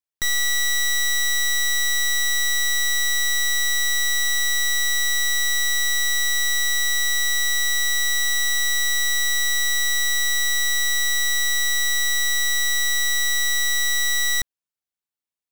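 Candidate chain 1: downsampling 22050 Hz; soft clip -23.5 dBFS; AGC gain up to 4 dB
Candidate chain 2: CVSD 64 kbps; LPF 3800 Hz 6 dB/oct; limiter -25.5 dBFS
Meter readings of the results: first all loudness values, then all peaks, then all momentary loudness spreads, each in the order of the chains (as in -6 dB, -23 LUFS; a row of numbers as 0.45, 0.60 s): -21.0, -34.0 LUFS; -20.0, -25.5 dBFS; 0, 0 LU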